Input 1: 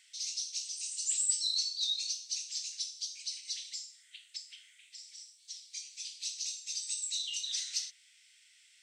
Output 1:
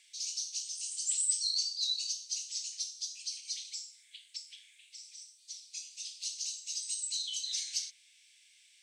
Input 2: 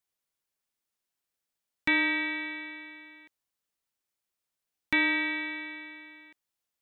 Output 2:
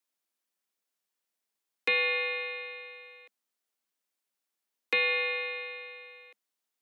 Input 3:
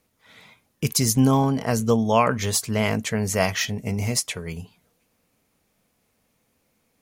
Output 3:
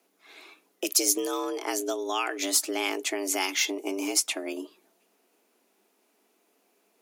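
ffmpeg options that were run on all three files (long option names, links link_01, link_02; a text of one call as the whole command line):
ffmpeg -i in.wav -filter_complex "[0:a]acrossover=split=1900[link_01][link_02];[link_01]acompressor=threshold=-29dB:ratio=6[link_03];[link_03][link_02]amix=inputs=2:normalize=0,afreqshift=190" out.wav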